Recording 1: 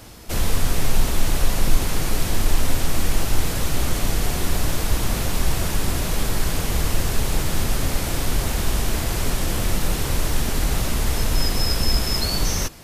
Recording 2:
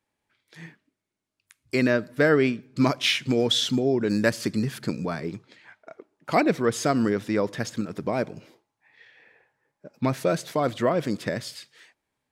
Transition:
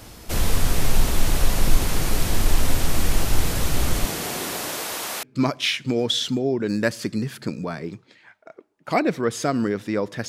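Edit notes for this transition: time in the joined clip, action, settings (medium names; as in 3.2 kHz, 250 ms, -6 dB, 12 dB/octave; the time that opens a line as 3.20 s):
recording 1
4.04–5.23 s: high-pass 170 Hz -> 660 Hz
5.23 s: go over to recording 2 from 2.64 s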